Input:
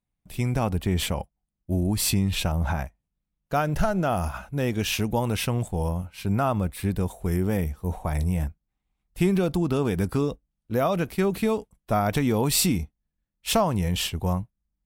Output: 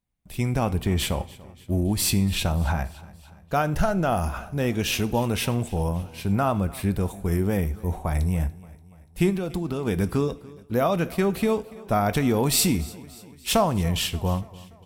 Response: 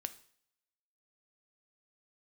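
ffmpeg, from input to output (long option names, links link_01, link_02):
-filter_complex "[0:a]asplit=3[link_01][link_02][link_03];[link_01]afade=type=out:start_time=9.29:duration=0.02[link_04];[link_02]acompressor=threshold=-25dB:ratio=6,afade=type=in:start_time=9.29:duration=0.02,afade=type=out:start_time=9.86:duration=0.02[link_05];[link_03]afade=type=in:start_time=9.86:duration=0.02[link_06];[link_04][link_05][link_06]amix=inputs=3:normalize=0,aecho=1:1:289|578|867|1156:0.0891|0.0508|0.029|0.0165,asplit=2[link_07][link_08];[1:a]atrim=start_sample=2205[link_09];[link_08][link_09]afir=irnorm=-1:irlink=0,volume=9dB[link_10];[link_07][link_10]amix=inputs=2:normalize=0,volume=-9dB"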